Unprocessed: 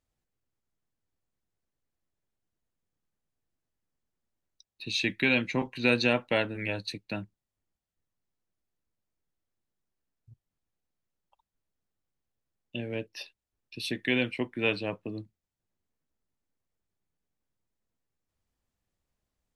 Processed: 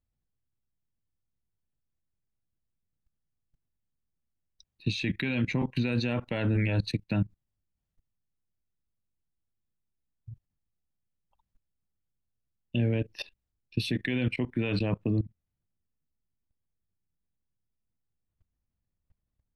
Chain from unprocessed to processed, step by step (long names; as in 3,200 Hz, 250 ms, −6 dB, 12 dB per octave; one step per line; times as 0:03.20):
output level in coarse steps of 20 dB
bass and treble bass +12 dB, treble −5 dB, from 0:15.09 treble −15 dB
level +7.5 dB